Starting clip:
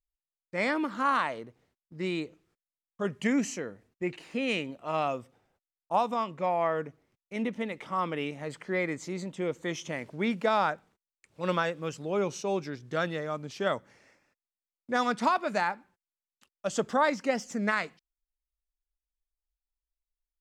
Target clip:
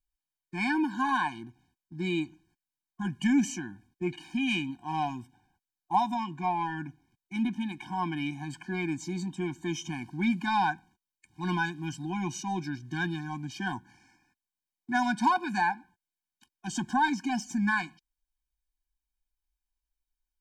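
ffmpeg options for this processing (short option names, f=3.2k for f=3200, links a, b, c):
-filter_complex "[0:a]asplit=2[a][b];[b]asoftclip=type=tanh:threshold=-28.5dB,volume=-11dB[c];[a][c]amix=inputs=2:normalize=0,afftfilt=real='re*eq(mod(floor(b*sr/1024/360),2),0)':imag='im*eq(mod(floor(b*sr/1024/360),2),0)':win_size=1024:overlap=0.75,volume=2dB"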